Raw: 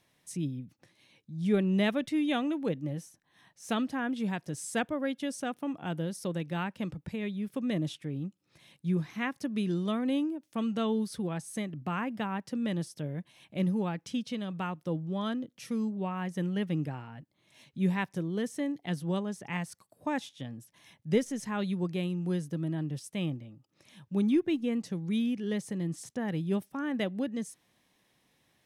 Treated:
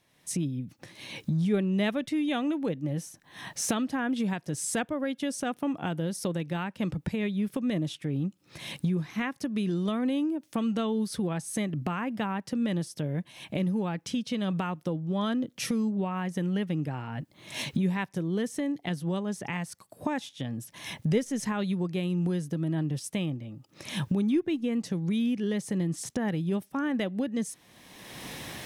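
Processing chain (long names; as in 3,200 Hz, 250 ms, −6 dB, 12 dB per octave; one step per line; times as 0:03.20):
camcorder AGC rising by 30 dB per second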